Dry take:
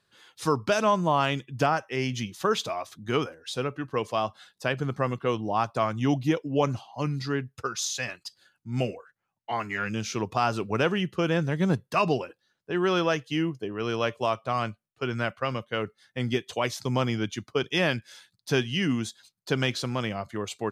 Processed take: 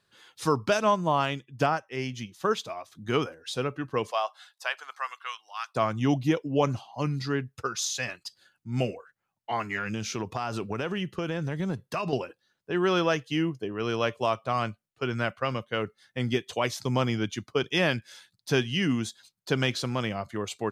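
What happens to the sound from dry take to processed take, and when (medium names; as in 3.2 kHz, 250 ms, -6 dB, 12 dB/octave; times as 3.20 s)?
0.77–2.95 s: upward expansion, over -36 dBFS
4.10–5.74 s: high-pass 550 Hz -> 1.5 kHz 24 dB/octave
9.77–12.13 s: compression, threshold -26 dBFS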